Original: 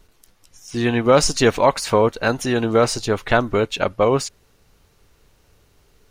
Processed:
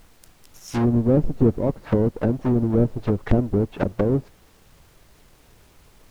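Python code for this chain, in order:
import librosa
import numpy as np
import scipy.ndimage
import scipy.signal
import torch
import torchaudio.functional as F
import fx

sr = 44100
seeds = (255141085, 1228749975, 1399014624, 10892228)

y = fx.halfwave_hold(x, sr)
y = fx.high_shelf(y, sr, hz=10000.0, db=6.0)
y = fx.env_lowpass_down(y, sr, base_hz=360.0, full_db=-11.0)
y = fx.dmg_noise_colour(y, sr, seeds[0], colour='pink', level_db=-53.0)
y = y * 10.0 ** (-4.0 / 20.0)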